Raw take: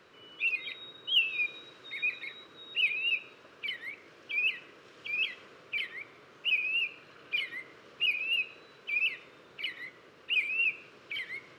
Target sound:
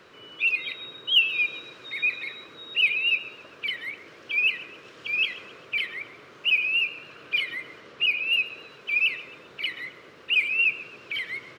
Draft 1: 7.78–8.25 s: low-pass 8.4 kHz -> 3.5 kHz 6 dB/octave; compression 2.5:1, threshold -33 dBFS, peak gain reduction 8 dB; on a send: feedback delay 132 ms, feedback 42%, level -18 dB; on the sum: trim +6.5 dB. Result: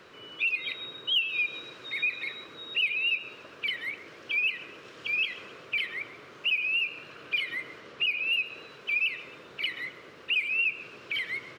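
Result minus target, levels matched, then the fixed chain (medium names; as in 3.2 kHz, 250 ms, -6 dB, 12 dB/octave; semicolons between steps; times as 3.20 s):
compression: peak gain reduction +8 dB
7.78–8.25 s: low-pass 8.4 kHz -> 3.5 kHz 6 dB/octave; on a send: feedback delay 132 ms, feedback 42%, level -18 dB; on the sum: trim +6.5 dB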